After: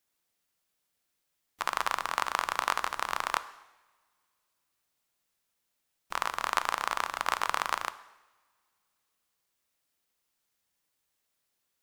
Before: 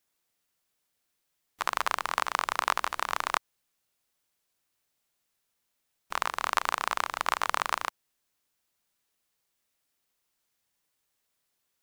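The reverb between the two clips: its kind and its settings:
coupled-rooms reverb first 0.96 s, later 2.8 s, from −23 dB, DRR 13 dB
level −1.5 dB

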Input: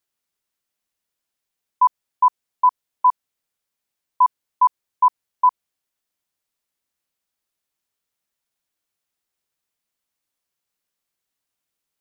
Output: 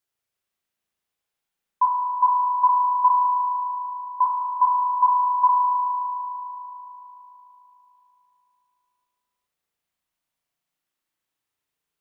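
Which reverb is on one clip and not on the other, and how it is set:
spring reverb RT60 3.6 s, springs 36 ms, chirp 35 ms, DRR −2.5 dB
level −3.5 dB

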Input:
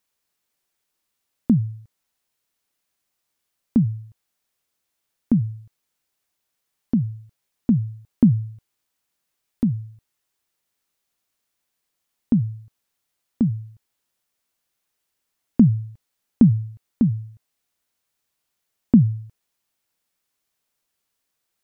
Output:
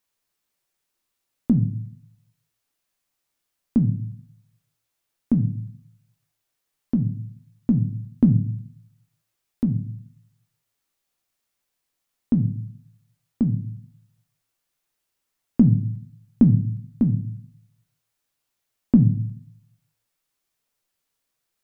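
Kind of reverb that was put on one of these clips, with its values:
rectangular room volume 53 cubic metres, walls mixed, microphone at 0.3 metres
level −2 dB

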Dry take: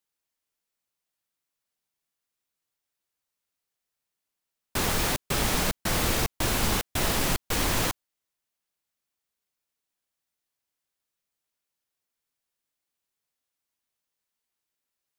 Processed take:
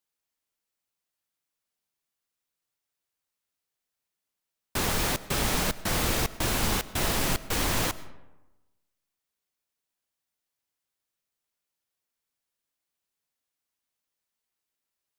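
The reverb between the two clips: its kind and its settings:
comb and all-pass reverb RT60 1.1 s, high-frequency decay 0.5×, pre-delay 65 ms, DRR 17 dB
level −1 dB

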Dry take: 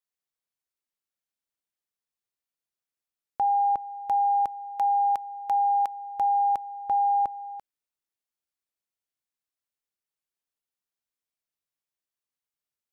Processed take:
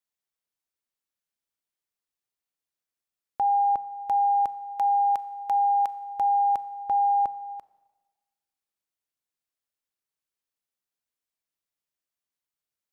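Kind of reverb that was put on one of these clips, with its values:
four-comb reverb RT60 1.3 s, combs from 29 ms, DRR 16.5 dB

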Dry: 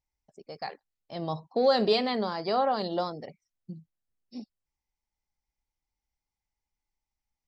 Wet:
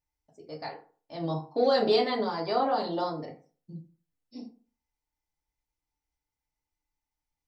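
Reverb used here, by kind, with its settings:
feedback delay network reverb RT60 0.4 s, low-frequency decay 1×, high-frequency decay 0.55×, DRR −2 dB
level −4 dB

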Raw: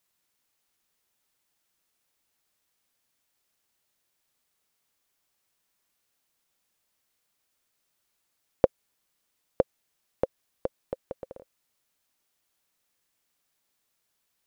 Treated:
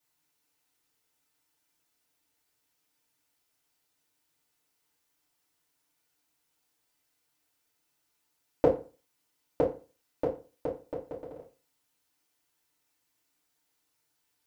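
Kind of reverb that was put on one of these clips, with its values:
feedback delay network reverb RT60 0.35 s, low-frequency decay 1.05×, high-frequency decay 0.85×, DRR −7.5 dB
level −8 dB

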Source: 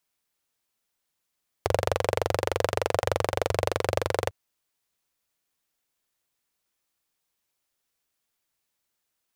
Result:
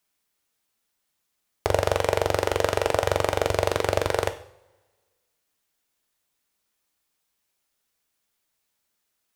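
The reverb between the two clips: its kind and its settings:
coupled-rooms reverb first 0.51 s, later 1.6 s, from −21 dB, DRR 7.5 dB
level +2.5 dB

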